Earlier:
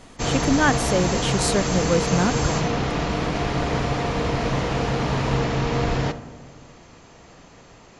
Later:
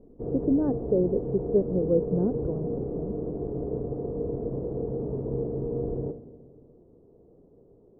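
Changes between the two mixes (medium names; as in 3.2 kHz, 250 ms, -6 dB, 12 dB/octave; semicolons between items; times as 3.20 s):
speech +4.5 dB; master: add four-pole ladder low-pass 480 Hz, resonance 60%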